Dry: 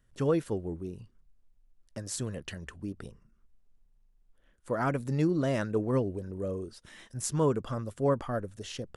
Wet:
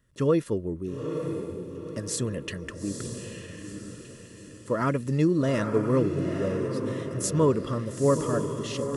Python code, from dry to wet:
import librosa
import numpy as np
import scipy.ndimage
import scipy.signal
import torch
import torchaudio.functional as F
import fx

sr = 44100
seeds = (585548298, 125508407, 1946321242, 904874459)

p1 = fx.peak_eq(x, sr, hz=790.0, db=-8.0, octaves=0.29)
p2 = fx.rider(p1, sr, range_db=3, speed_s=2.0)
p3 = p1 + (p2 * 10.0 ** (-2.5 / 20.0))
p4 = fx.notch_comb(p3, sr, f0_hz=760.0)
y = fx.echo_diffused(p4, sr, ms=903, feedback_pct=44, wet_db=-6)